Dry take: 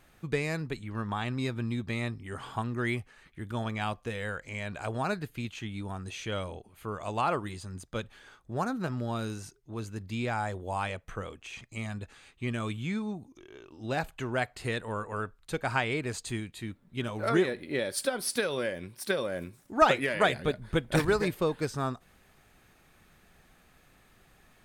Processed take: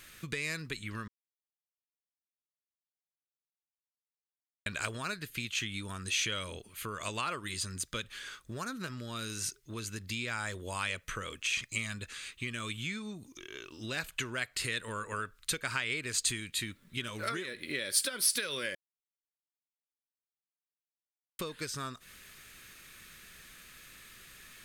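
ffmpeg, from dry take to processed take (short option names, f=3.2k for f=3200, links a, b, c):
-filter_complex "[0:a]asplit=5[a][b][c][d][e];[a]atrim=end=1.08,asetpts=PTS-STARTPTS,afade=t=out:st=1.076:d=0.004:c=hsin[f];[b]atrim=start=1.08:end=4.66,asetpts=PTS-STARTPTS,volume=0[g];[c]atrim=start=4.66:end=18.75,asetpts=PTS-STARTPTS,afade=t=in:d=0.004:c=hsin,afade=t=out:st=14.086:d=0.004:c=hsin[h];[d]atrim=start=18.75:end=21.39,asetpts=PTS-STARTPTS,volume=0[i];[e]atrim=start=21.39,asetpts=PTS-STARTPTS,afade=t=in:d=0.004:c=hsin[j];[f][g][h][i][j]concat=n=5:v=0:a=1,equalizer=f=780:t=o:w=0.53:g=-14,acompressor=threshold=-38dB:ratio=12,tiltshelf=f=1.1k:g=-7.5,volume=7dB"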